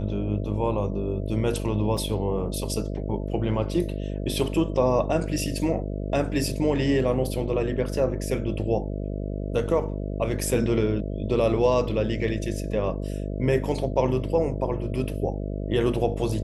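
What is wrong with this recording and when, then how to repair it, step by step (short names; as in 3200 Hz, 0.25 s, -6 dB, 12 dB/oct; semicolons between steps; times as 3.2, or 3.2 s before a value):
buzz 50 Hz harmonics 13 -30 dBFS
1.97 gap 4.2 ms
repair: de-hum 50 Hz, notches 13; interpolate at 1.97, 4.2 ms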